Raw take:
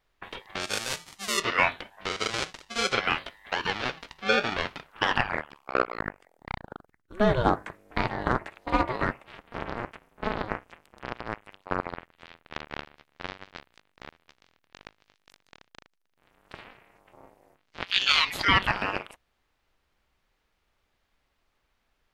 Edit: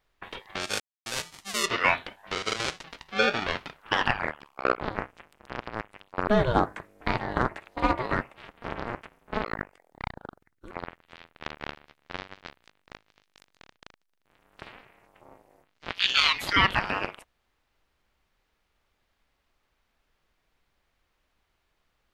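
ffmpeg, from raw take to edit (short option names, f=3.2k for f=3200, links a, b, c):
-filter_complex "[0:a]asplit=8[a][b][c][d][e][f][g][h];[a]atrim=end=0.8,asetpts=PTS-STARTPTS,afade=t=out:st=0.796:d=0.004:c=hsin,apad=pad_dur=0.26[i];[b]atrim=start=0.8:end=2.582,asetpts=PTS-STARTPTS,afade=t=in:d=0.004:c=hsin[j];[c]atrim=start=3.938:end=5.912[k];[d]atrim=start=10.338:end=11.812[l];[e]atrim=start=7.178:end=10.342[m];[f]atrim=start=5.908:end=7.182[n];[g]atrim=start=11.808:end=14.032[o];[h]atrim=start=14.848[p];[i][j]concat=n=2:v=0:a=1[q];[q][k]acrossfade=d=0.004:c1=hsin:c2=hsin[r];[r][l]acrossfade=d=0.004:c1=hsin:c2=hsin[s];[s][m]acrossfade=d=0.004:c1=hsin:c2=hsin[t];[t][n]acrossfade=d=0.004:c1=hsin:c2=hsin[u];[u][o]acrossfade=d=0.004:c1=hsin:c2=hsin[v];[v][p]acrossfade=d=0.004:c1=hsin:c2=hsin"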